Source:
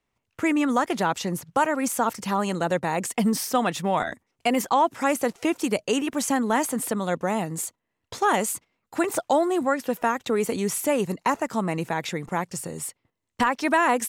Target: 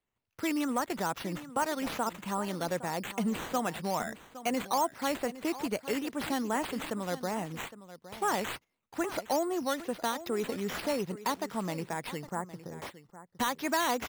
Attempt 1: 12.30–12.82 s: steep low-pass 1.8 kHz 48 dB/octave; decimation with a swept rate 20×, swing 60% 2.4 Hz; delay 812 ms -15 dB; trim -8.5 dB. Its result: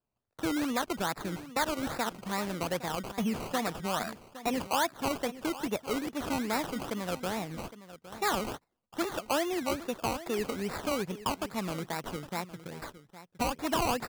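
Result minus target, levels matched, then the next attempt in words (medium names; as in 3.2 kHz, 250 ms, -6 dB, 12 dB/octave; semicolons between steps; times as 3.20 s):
decimation with a swept rate: distortion +9 dB
12.30–12.82 s: steep low-pass 1.8 kHz 48 dB/octave; decimation with a swept rate 7×, swing 60% 2.4 Hz; delay 812 ms -15 dB; trim -8.5 dB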